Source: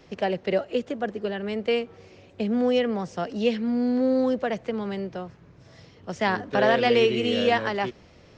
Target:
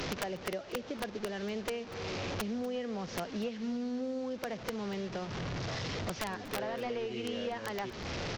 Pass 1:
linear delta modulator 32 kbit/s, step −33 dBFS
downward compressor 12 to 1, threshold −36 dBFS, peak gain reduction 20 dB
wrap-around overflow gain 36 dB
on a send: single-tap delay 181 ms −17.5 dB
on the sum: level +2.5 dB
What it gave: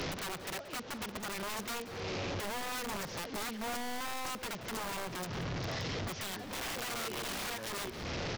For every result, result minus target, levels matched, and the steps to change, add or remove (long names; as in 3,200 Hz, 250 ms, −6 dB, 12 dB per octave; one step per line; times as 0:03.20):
wrap-around overflow: distortion +18 dB; echo 61 ms early
change: wrap-around overflow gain 29 dB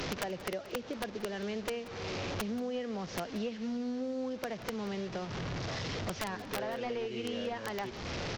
echo 61 ms early
change: single-tap delay 242 ms −17.5 dB